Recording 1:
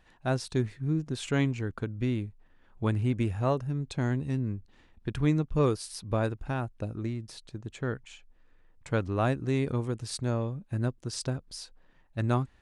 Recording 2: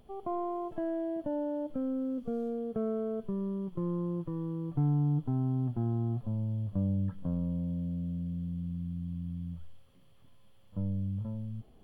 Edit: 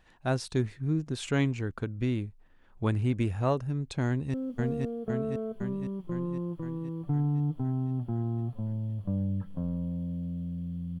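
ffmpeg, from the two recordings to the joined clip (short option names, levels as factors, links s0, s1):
-filter_complex "[0:a]apad=whole_dur=11,atrim=end=11,atrim=end=4.342[s0];[1:a]atrim=start=2.018:end=8.68[s1];[s0][s1]acrossfade=d=0.004:c1=hsin:c2=hsin,asplit=2[s2][s3];[s3]afade=t=in:st=4.07:d=0.01,afade=t=out:st=4.34:d=0.01,aecho=0:1:510|1020|1530|2040|2550|3060|3570|4080|4590|5100|5610:0.841395|0.546907|0.355489|0.231068|0.150194|0.0976263|0.0634571|0.0412471|0.0268106|0.0174269|0.0113275[s4];[s2][s4]amix=inputs=2:normalize=0"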